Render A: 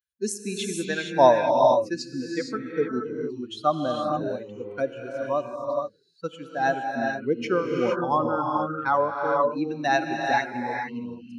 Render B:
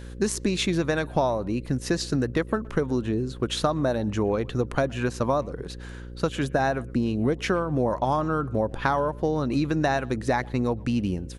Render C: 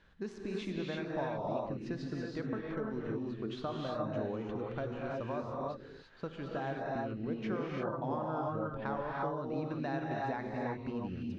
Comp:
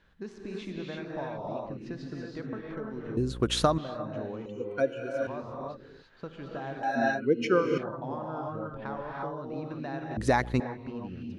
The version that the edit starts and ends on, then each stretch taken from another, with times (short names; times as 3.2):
C
3.17–3.78 from B
4.46–5.27 from A
6.83–7.78 from A
10.17–10.6 from B